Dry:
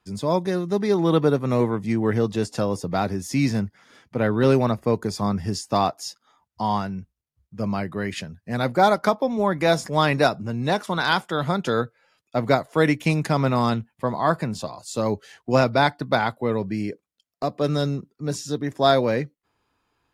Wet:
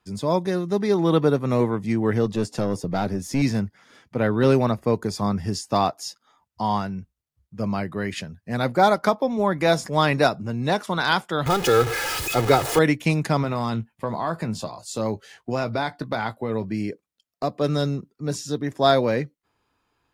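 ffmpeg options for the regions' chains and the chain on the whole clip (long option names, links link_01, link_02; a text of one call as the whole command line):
ffmpeg -i in.wav -filter_complex "[0:a]asettb=1/sr,asplit=3[link_01][link_02][link_03];[link_01]atrim=end=2.254[link_04];[link_02]atrim=start=2.25:end=3.42,asetpts=PTS-STARTPTS,afade=type=in:duration=0.004:curve=qsin,afade=type=out:start_time=1.166:duration=0.004:curve=qsin,highpass=frequency=140:poles=1,lowshelf=frequency=270:gain=7.5,aeval=exprs='(tanh(5.62*val(0)+0.4)-tanh(0.4))/5.62':channel_layout=same[link_05];[link_03]atrim=start=3.416[link_06];[link_04][link_05]acrossfade=duration=0.004:curve1=hsin:curve2=qsin[link_07];[link_07][link_06]acrossfade=duration=0.004:curve1=qsin:curve2=hsin,asettb=1/sr,asplit=3[link_08][link_09][link_10];[link_08]atrim=end=11.464[link_11];[link_09]atrim=start=11.46:end=12.79,asetpts=PTS-STARTPTS,afade=type=in:duration=0.004:curve=qsin,afade=type=out:start_time=1.326:duration=0.004:curve=qsin,aeval=exprs='val(0)+0.5*0.075*sgn(val(0))':channel_layout=same,aecho=1:1:2.4:0.63,atrim=end_sample=58653[link_12];[link_10]atrim=start=12.786[link_13];[link_11][link_12]acrossfade=duration=0.004:curve1=hsin:curve2=qsin[link_14];[link_14][link_13]acrossfade=duration=0.004:curve1=qsin:curve2=hsin,asettb=1/sr,asplit=3[link_15][link_16][link_17];[link_15]atrim=end=13.424[link_18];[link_16]atrim=start=13.42:end=16.75,asetpts=PTS-STARTPTS,afade=type=in:duration=0.004:curve=qsin,afade=type=out:start_time=3.326:duration=0.004:curve=qsin,acompressor=threshold=-22dB:ratio=3:attack=3.2:release=140:knee=1:detection=peak,asplit=2[link_19][link_20];[link_20]adelay=18,volume=-11dB[link_21];[link_19][link_21]amix=inputs=2:normalize=0,atrim=end_sample=146853[link_22];[link_17]atrim=start=16.746[link_23];[link_18][link_22]acrossfade=duration=0.004:curve1=hsin:curve2=qsin[link_24];[link_24][link_23]acrossfade=duration=0.004:curve1=qsin:curve2=hsin" out.wav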